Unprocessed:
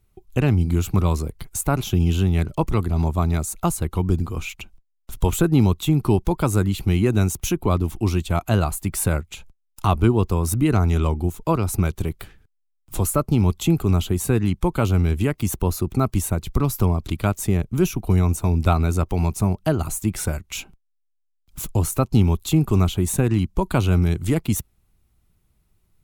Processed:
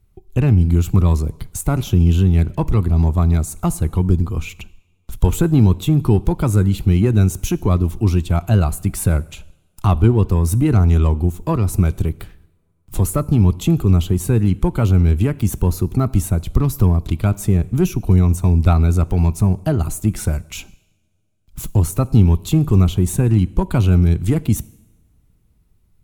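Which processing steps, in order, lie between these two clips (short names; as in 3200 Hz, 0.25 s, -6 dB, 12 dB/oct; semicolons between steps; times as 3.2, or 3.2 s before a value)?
reverb, pre-delay 3 ms, DRR 19 dB; in parallel at -4 dB: one-sided clip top -18.5 dBFS; on the sum: low shelf 280 Hz +8 dB; gain -5 dB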